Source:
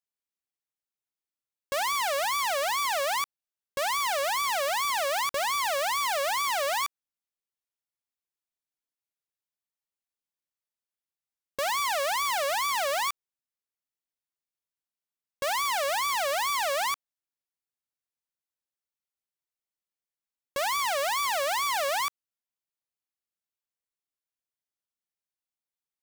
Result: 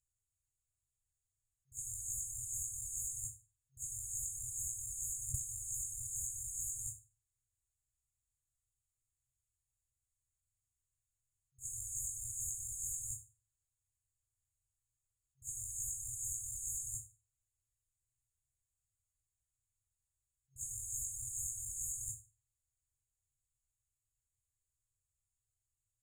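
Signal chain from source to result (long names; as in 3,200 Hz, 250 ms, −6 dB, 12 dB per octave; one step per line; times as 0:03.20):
sub-harmonics by changed cycles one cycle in 2, inverted
formants moved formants +6 semitones
in parallel at −6 dB: gain into a clipping stage and back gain 33 dB
on the sum: convolution reverb RT60 0.35 s, pre-delay 29 ms, DRR 11 dB
brick-wall band-stop 130–6,500 Hz
low-shelf EQ 86 Hz +6.5 dB
compressor whose output falls as the input rises −39 dBFS, ratio −1
high-frequency loss of the air 90 metres
level that may rise only so fast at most 320 dB per second
level +9 dB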